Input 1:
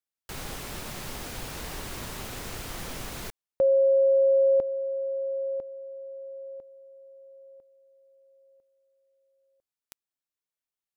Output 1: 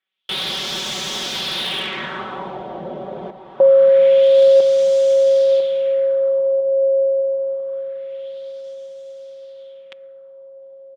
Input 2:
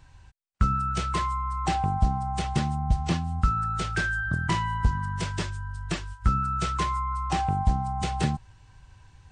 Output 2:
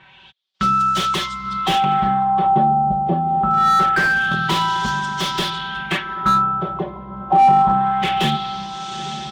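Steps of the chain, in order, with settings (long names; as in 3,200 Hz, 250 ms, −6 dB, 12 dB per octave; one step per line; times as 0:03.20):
high-pass filter 190 Hz 12 dB per octave
parametric band 3,400 Hz +14.5 dB 0.42 octaves
comb filter 5.3 ms, depth 93%
in parallel at +1 dB: brickwall limiter −19 dBFS
on the sum: feedback delay with all-pass diffusion 918 ms, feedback 58%, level −11 dB
floating-point word with a short mantissa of 4 bits
auto-filter low-pass sine 0.25 Hz 620–6,400 Hz
slew-rate limiting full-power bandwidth 290 Hz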